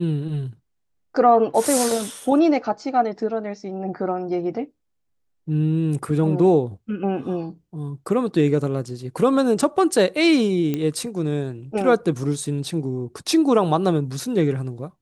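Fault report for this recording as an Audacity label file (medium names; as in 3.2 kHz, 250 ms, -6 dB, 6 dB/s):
10.740000	10.740000	pop -12 dBFS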